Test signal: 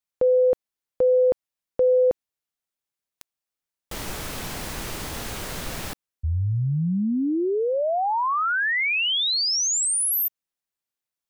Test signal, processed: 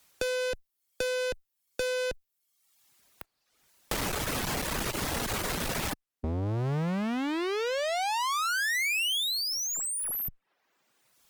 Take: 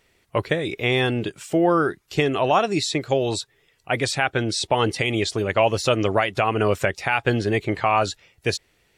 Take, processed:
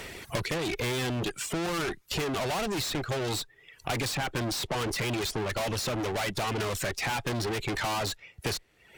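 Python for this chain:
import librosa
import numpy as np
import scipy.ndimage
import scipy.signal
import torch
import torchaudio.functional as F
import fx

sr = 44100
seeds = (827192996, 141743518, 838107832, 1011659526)

y = fx.tube_stage(x, sr, drive_db=33.0, bias=0.6)
y = fx.dereverb_blind(y, sr, rt60_s=0.72)
y = fx.clip_asym(y, sr, top_db=-40.5, bottom_db=-35.0)
y = fx.band_squash(y, sr, depth_pct=70)
y = F.gain(torch.from_numpy(y), 8.0).numpy()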